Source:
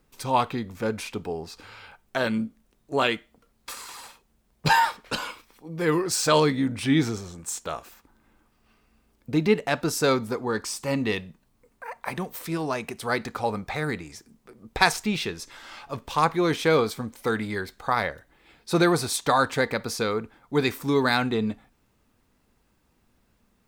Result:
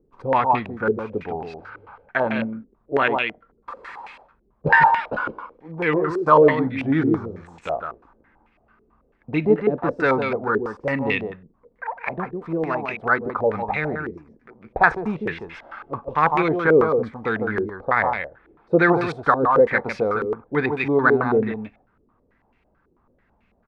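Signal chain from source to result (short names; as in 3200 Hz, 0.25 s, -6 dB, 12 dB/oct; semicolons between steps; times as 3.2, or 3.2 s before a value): on a send: echo 0.153 s -6 dB; on the sum: stepped low-pass 9.1 Hz 400–2400 Hz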